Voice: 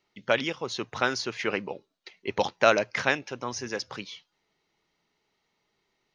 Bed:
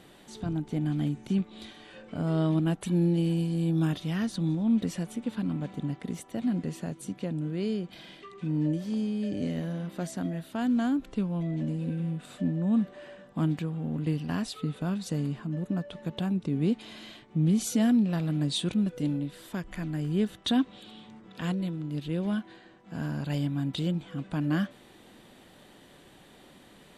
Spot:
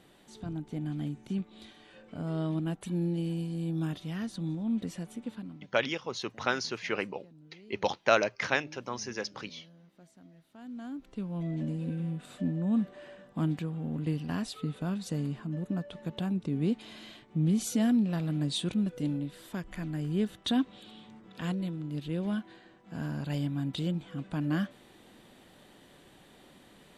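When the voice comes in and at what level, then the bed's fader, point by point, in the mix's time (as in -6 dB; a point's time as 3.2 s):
5.45 s, -3.5 dB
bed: 5.31 s -6 dB
5.73 s -23.5 dB
10.36 s -23.5 dB
11.46 s -2.5 dB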